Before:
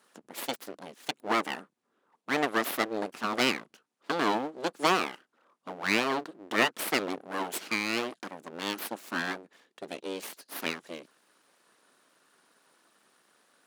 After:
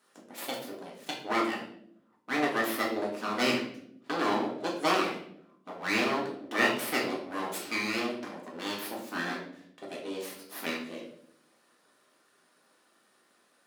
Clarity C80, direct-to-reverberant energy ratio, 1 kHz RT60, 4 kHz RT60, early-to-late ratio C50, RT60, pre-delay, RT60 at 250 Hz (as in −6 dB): 9.0 dB, −3.0 dB, 0.55 s, 0.50 s, 6.0 dB, 0.70 s, 3 ms, 1.1 s